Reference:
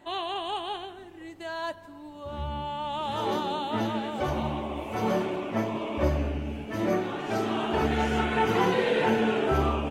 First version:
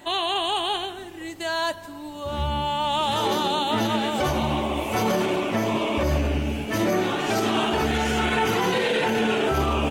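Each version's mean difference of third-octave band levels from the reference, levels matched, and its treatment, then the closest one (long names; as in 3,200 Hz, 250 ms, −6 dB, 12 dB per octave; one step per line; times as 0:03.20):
5.0 dB: high-shelf EQ 3,200 Hz +11 dB
brickwall limiter −21 dBFS, peak gain reduction 10 dB
level +7 dB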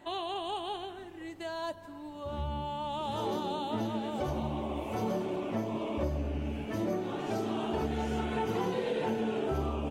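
3.0 dB: dynamic equaliser 1,800 Hz, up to −8 dB, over −44 dBFS, Q 0.78
downward compressor 3 to 1, threshold −30 dBFS, peak gain reduction 8 dB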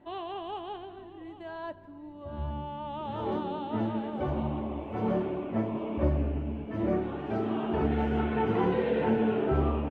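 6.5 dB: drawn EQ curve 270 Hz 0 dB, 3,100 Hz −12 dB, 6,500 Hz −27 dB
on a send: single-tap delay 806 ms −16.5 dB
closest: second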